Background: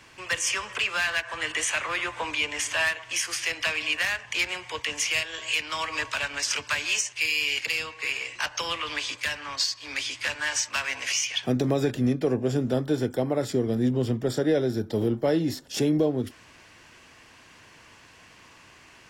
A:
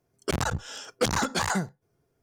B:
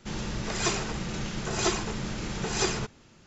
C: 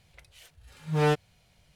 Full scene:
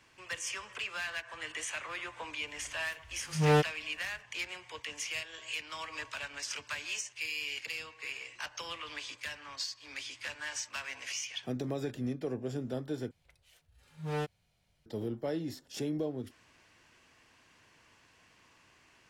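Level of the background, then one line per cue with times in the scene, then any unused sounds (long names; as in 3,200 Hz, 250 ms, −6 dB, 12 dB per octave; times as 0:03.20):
background −11.5 dB
0:02.47: mix in C −1 dB
0:13.11: overwrite with C −11 dB
not used: A, B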